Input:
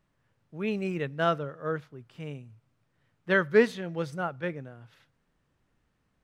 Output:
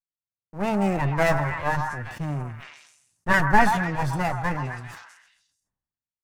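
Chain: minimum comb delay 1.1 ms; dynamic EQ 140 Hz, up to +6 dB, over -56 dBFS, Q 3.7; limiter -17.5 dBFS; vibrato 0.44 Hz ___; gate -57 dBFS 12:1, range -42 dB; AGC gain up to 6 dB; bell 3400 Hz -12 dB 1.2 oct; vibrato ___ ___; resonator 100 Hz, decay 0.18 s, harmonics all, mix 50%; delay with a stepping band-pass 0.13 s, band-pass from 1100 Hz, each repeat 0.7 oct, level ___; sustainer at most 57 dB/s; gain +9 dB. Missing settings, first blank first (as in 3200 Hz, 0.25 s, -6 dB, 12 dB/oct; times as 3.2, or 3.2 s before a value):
57 cents, 2.9 Hz, 17 cents, -4 dB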